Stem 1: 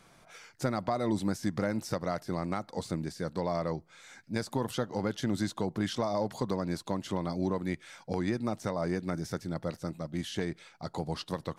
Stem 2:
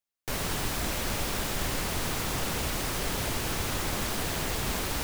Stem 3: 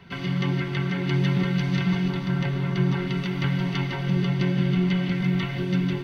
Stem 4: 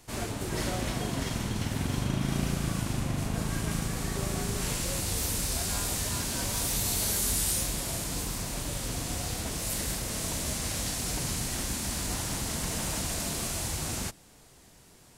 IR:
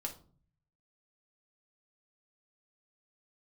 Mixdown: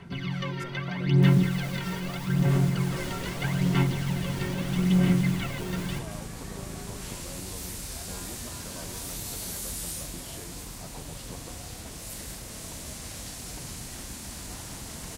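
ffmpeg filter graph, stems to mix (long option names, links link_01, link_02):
-filter_complex "[0:a]acompressor=threshold=-37dB:ratio=6,volume=-5dB[link_01];[1:a]alimiter=level_in=5dB:limit=-24dB:level=0:latency=1:release=252,volume=-5dB,adelay=950,volume=-4dB[link_02];[2:a]aphaser=in_gain=1:out_gain=1:delay=2.2:decay=0.7:speed=0.79:type=sinusoidal,volume=-6.5dB[link_03];[3:a]adelay=2400,volume=-7dB[link_04];[link_01][link_02][link_03][link_04]amix=inputs=4:normalize=0"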